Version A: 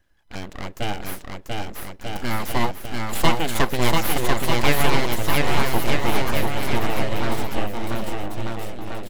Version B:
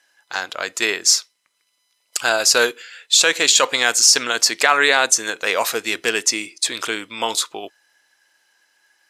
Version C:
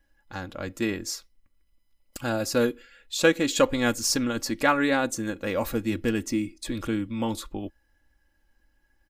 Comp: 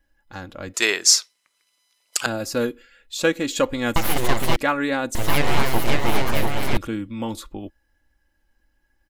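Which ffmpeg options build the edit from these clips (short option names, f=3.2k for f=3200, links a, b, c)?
-filter_complex "[0:a]asplit=2[a][b];[2:a]asplit=4[c][d][e][f];[c]atrim=end=0.742[g];[1:a]atrim=start=0.738:end=2.262[h];[d]atrim=start=2.258:end=3.962[i];[a]atrim=start=3.958:end=4.562[j];[e]atrim=start=4.558:end=5.152[k];[b]atrim=start=5.148:end=6.772[l];[f]atrim=start=6.768[m];[g][h]acrossfade=d=0.004:c1=hsin:c2=hsin[n];[n][i]acrossfade=d=0.004:c1=hsin:c2=hsin[o];[o][j]acrossfade=d=0.004:c1=hsin:c2=hsin[p];[p][k]acrossfade=d=0.004:c1=hsin:c2=hsin[q];[q][l]acrossfade=d=0.004:c1=hsin:c2=hsin[r];[r][m]acrossfade=d=0.004:c1=hsin:c2=hsin"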